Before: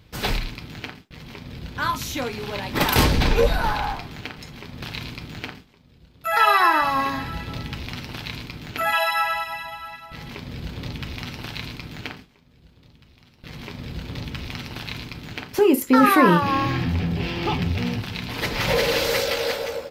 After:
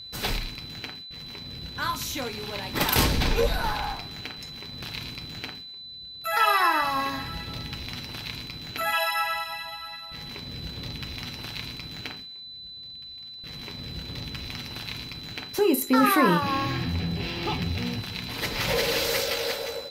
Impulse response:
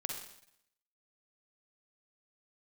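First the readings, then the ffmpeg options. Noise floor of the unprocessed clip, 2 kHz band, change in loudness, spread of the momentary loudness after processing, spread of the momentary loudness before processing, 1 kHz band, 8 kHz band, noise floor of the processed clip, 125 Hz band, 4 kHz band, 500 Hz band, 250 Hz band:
-54 dBFS, -4.0 dB, -5.0 dB, 16 LU, 19 LU, -5.0 dB, 0.0 dB, -42 dBFS, -5.5 dB, 0.0 dB, -5.0 dB, -5.0 dB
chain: -filter_complex "[0:a]aeval=exprs='val(0)+0.0141*sin(2*PI*4000*n/s)':c=same,highshelf=f=4000:g=6.5,asplit=2[s0][s1];[1:a]atrim=start_sample=2205[s2];[s1][s2]afir=irnorm=-1:irlink=0,volume=0.168[s3];[s0][s3]amix=inputs=2:normalize=0,volume=0.473"

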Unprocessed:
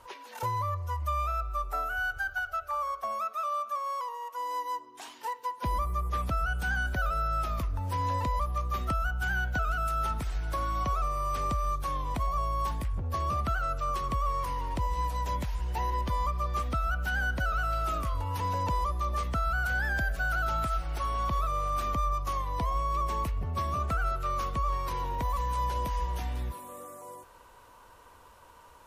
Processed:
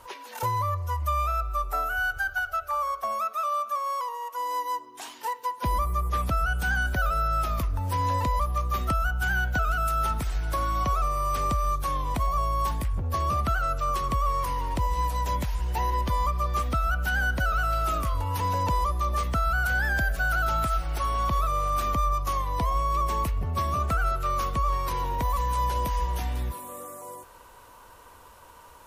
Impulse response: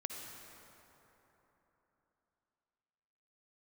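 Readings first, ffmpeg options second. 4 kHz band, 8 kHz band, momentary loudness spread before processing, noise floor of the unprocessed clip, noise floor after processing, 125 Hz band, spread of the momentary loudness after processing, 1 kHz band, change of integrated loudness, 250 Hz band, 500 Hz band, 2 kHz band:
+4.5 dB, +6.5 dB, 5 LU, -54 dBFS, -50 dBFS, +4.0 dB, 5 LU, +4.0 dB, +4.0 dB, +4.0 dB, +4.0 dB, +4.0 dB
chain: -af "highshelf=f=9000:g=6.5,volume=1.58"

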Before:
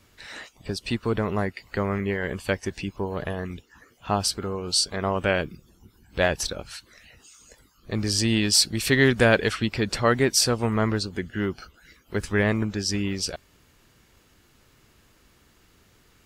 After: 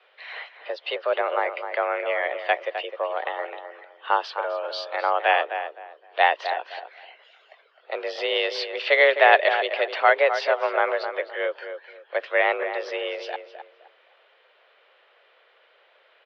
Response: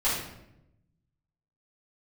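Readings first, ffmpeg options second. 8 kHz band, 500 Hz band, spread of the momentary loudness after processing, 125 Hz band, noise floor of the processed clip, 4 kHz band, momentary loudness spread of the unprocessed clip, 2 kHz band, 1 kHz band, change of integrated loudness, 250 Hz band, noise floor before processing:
under -25 dB, +3.0 dB, 18 LU, under -40 dB, -60 dBFS, -4.0 dB, 17 LU, +4.5 dB, +8.5 dB, +1.0 dB, under -15 dB, -60 dBFS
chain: -filter_complex "[0:a]highpass=f=330:t=q:w=0.5412,highpass=f=330:t=q:w=1.307,lowpass=f=3400:t=q:w=0.5176,lowpass=f=3400:t=q:w=0.7071,lowpass=f=3400:t=q:w=1.932,afreqshift=160,asplit=2[s0][s1];[s1]adelay=258,lowpass=f=1800:p=1,volume=0.398,asplit=2[s2][s3];[s3]adelay=258,lowpass=f=1800:p=1,volume=0.27,asplit=2[s4][s5];[s5]adelay=258,lowpass=f=1800:p=1,volume=0.27[s6];[s0][s2][s4][s6]amix=inputs=4:normalize=0,volume=1.58"

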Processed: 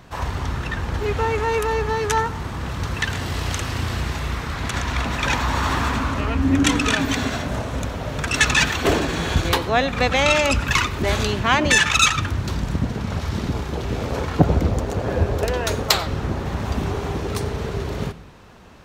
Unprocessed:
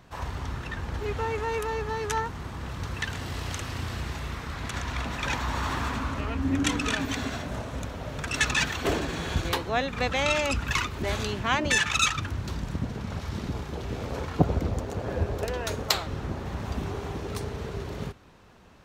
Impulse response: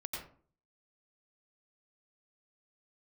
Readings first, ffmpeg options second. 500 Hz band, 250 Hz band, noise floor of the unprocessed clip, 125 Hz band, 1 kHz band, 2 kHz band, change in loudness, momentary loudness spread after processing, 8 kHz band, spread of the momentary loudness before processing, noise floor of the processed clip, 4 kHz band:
+8.0 dB, +8.0 dB, -39 dBFS, +8.0 dB, +8.0 dB, +8.0 dB, +8.0 dB, 10 LU, +7.5 dB, 11 LU, -30 dBFS, +7.5 dB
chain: -filter_complex "[0:a]acontrast=86,asplit=2[s0][s1];[1:a]atrim=start_sample=2205[s2];[s1][s2]afir=irnorm=-1:irlink=0,volume=0.178[s3];[s0][s3]amix=inputs=2:normalize=0"

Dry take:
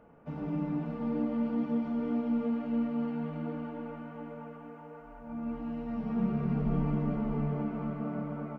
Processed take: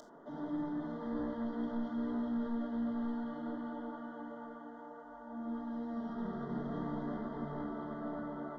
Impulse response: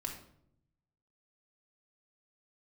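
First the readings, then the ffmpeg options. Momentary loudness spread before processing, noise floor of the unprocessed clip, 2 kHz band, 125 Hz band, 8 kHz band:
13 LU, -49 dBFS, -1.5 dB, -13.5 dB, no reading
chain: -filter_complex "[0:a]acrossover=split=240 2800:gain=0.0794 1 0.2[s0][s1][s2];[s0][s1][s2]amix=inputs=3:normalize=0,acompressor=mode=upward:threshold=0.00355:ratio=2.5,aexciter=amount=3.6:drive=6.2:freq=2700,aresample=16000,asoftclip=type=tanh:threshold=0.0188,aresample=44100,asuperstop=centerf=2500:order=20:qfactor=2.4[s3];[1:a]atrim=start_sample=2205,afade=t=out:st=0.14:d=0.01,atrim=end_sample=6615[s4];[s3][s4]afir=irnorm=-1:irlink=0,volume=1.19"

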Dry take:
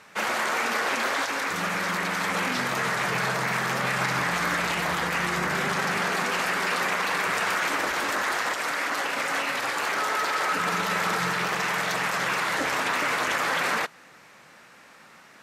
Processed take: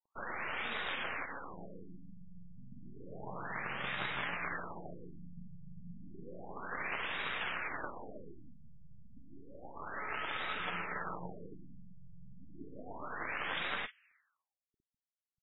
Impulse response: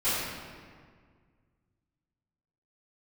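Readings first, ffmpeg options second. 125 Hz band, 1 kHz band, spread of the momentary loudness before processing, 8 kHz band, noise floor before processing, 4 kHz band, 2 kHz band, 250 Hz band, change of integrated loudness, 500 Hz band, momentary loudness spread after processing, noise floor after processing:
-14.5 dB, -17.0 dB, 2 LU, under -40 dB, -52 dBFS, -15.5 dB, -15.5 dB, -15.5 dB, -14.5 dB, -16.5 dB, 20 LU, under -85 dBFS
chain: -filter_complex "[0:a]highshelf=f=6100:t=q:w=3:g=-12,flanger=delay=0.6:depth=6.3:regen=78:speed=0.41:shape=triangular,acrossover=split=1900[s0][s1];[s0]acrusher=bits=5:dc=4:mix=0:aa=0.000001[s2];[s1]asplit=2[s3][s4];[s4]adelay=47,volume=0.447[s5];[s3][s5]amix=inputs=2:normalize=0[s6];[s2][s6]amix=inputs=2:normalize=0,afftfilt=real='re*lt(b*sr/1024,200*pow(3900/200,0.5+0.5*sin(2*PI*0.31*pts/sr)))':imag='im*lt(b*sr/1024,200*pow(3900/200,0.5+0.5*sin(2*PI*0.31*pts/sr)))':win_size=1024:overlap=0.75,volume=0.473"

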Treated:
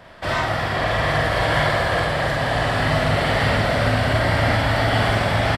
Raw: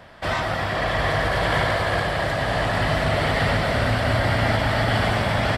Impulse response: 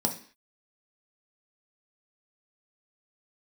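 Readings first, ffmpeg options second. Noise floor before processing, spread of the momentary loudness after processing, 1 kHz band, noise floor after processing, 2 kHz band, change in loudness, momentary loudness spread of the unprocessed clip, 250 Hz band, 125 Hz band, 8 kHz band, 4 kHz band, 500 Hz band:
-26 dBFS, 3 LU, +2.0 dB, -25 dBFS, +2.0 dB, +2.0 dB, 3 LU, +2.0 dB, +2.0 dB, +2.0 dB, +2.0 dB, +2.0 dB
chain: -filter_complex "[0:a]asplit=2[s0][s1];[s1]adelay=47,volume=0.794[s2];[s0][s2]amix=inputs=2:normalize=0"

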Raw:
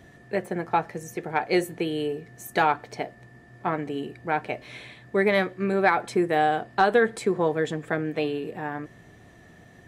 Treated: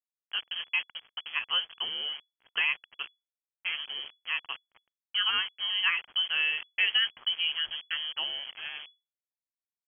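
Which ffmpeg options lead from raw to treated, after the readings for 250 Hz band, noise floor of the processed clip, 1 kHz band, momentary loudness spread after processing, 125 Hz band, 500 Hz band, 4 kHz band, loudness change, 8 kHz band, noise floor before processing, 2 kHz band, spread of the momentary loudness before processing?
under -35 dB, under -85 dBFS, -18.0 dB, 14 LU, under -30 dB, -32.0 dB, +13.5 dB, -3.5 dB, under -35 dB, -52 dBFS, -1.5 dB, 13 LU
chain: -af "aeval=exprs='val(0)*gte(abs(val(0)),0.0237)':c=same,lowpass=f=2900:t=q:w=0.5098,lowpass=f=2900:t=q:w=0.6013,lowpass=f=2900:t=q:w=0.9,lowpass=f=2900:t=q:w=2.563,afreqshift=-3400,volume=0.473"

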